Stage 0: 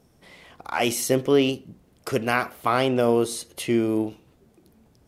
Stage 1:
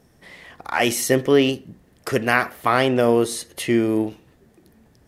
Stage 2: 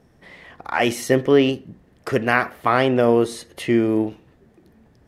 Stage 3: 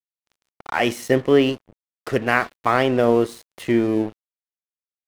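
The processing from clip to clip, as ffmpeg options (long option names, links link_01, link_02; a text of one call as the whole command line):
ffmpeg -i in.wav -af "equalizer=frequency=1800:width=6.5:gain=10.5,volume=3dB" out.wav
ffmpeg -i in.wav -af "highshelf=frequency=4800:gain=-11.5,volume=1dB" out.wav
ffmpeg -i in.wav -af "aeval=exprs='sgn(val(0))*max(abs(val(0))-0.0168,0)':channel_layout=same" out.wav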